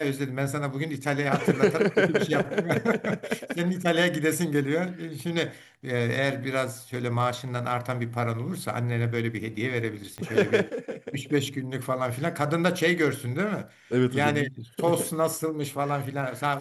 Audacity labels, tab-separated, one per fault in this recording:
10.180000	10.180000	pop -23 dBFS

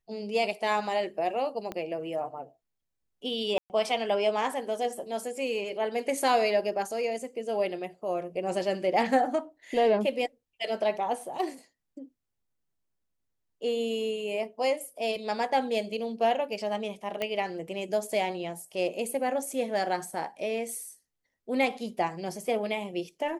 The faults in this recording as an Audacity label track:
1.720000	1.720000	pop -21 dBFS
3.580000	3.700000	gap 0.119 s
17.220000	17.220000	pop -17 dBFS

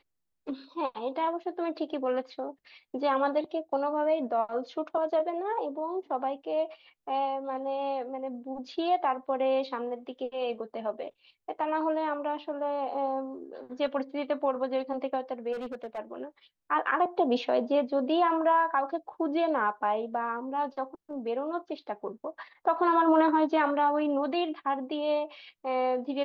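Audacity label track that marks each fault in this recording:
15.520000	15.990000	clipped -32.5 dBFS

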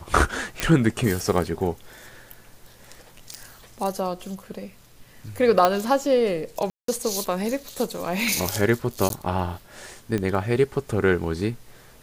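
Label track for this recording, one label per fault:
0.600000	0.600000	pop -7 dBFS
3.340000	3.340000	pop
5.650000	5.650000	pop -5 dBFS
6.700000	6.880000	gap 0.183 s
9.090000	9.100000	gap 12 ms
10.180000	10.180000	pop -14 dBFS

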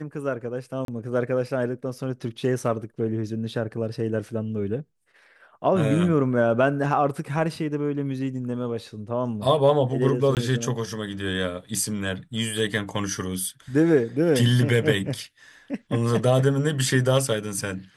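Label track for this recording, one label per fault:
0.850000	0.880000	gap 32 ms
10.350000	10.370000	gap 18 ms

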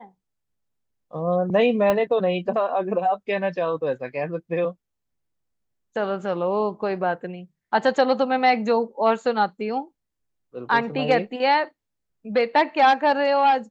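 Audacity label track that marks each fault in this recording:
1.900000	1.900000	pop -9 dBFS

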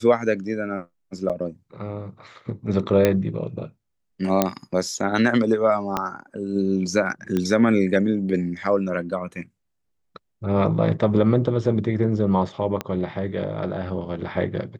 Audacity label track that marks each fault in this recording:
1.290000	1.300000	gap 7.1 ms
3.050000	3.050000	pop -5 dBFS
4.420000	4.420000	pop -3 dBFS
5.970000	5.970000	pop -9 dBFS
7.370000	7.370000	pop -12 dBFS
12.810000	12.810000	pop -12 dBFS

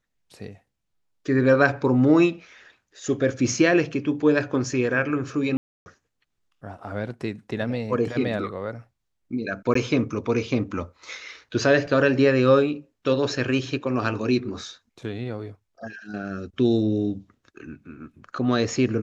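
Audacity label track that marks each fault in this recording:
5.570000	5.860000	gap 0.29 s
9.740000	9.750000	gap 14 ms

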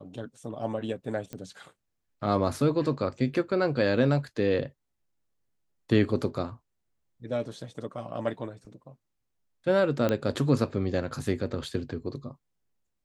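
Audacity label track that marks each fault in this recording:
1.330000	1.330000	pop -22 dBFS
10.090000	10.090000	pop -14 dBFS

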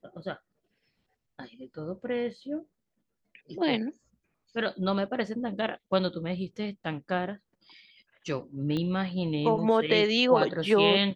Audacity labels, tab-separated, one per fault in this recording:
8.770000	8.770000	pop -21 dBFS

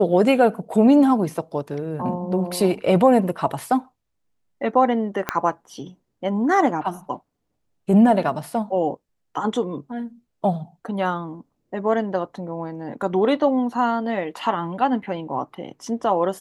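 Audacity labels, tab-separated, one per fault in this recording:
5.290000	5.290000	pop -6 dBFS

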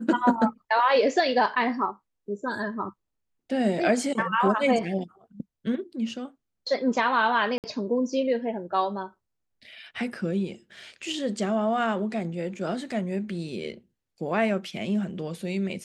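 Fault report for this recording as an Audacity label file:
7.580000	7.640000	gap 58 ms

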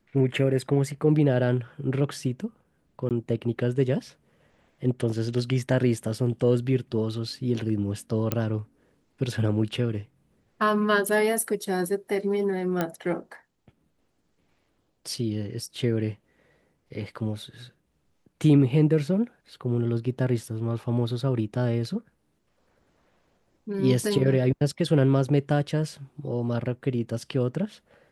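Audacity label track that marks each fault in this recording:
3.090000	3.110000	gap 18 ms
8.320000	8.320000	pop -10 dBFS
12.810000	12.810000	pop -12 dBFS

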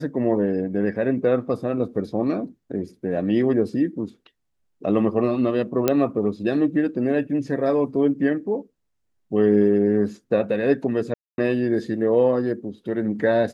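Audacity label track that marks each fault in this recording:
5.880000	5.880000	pop -5 dBFS
11.140000	11.380000	gap 0.241 s

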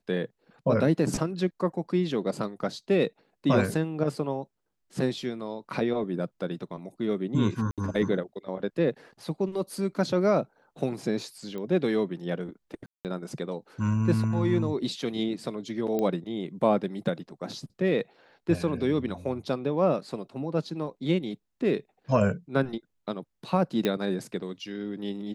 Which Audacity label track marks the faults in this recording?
7.710000	7.780000	gap 67 ms
11.580000	11.580000	pop -25 dBFS
12.860000	13.050000	gap 0.188 s
15.990000	15.990000	pop -17 dBFS
23.850000	23.850000	pop -13 dBFS

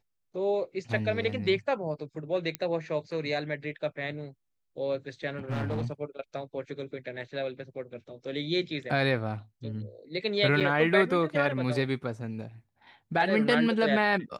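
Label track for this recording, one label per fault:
2.550000	2.550000	pop -15 dBFS
5.390000	5.920000	clipped -27 dBFS
10.600000	10.610000	gap 7.6 ms

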